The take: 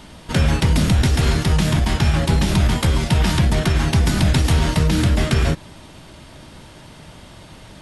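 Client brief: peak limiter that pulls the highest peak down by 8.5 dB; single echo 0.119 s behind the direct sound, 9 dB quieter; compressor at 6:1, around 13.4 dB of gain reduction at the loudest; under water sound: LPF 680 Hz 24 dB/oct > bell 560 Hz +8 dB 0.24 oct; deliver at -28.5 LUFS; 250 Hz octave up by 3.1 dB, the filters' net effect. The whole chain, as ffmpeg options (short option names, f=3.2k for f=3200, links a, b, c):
-af "equalizer=f=250:t=o:g=4.5,acompressor=threshold=-26dB:ratio=6,alimiter=limit=-22.5dB:level=0:latency=1,lowpass=f=680:w=0.5412,lowpass=f=680:w=1.3066,equalizer=f=560:t=o:w=0.24:g=8,aecho=1:1:119:0.355,volume=4.5dB"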